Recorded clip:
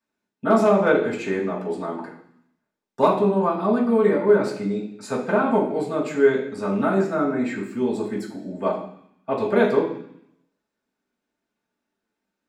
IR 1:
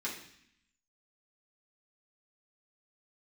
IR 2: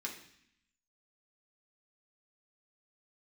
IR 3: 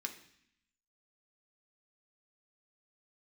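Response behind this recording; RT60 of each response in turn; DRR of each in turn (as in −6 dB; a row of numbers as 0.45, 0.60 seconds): 1; 0.65, 0.65, 0.65 seconds; −7.0, −2.0, 3.0 decibels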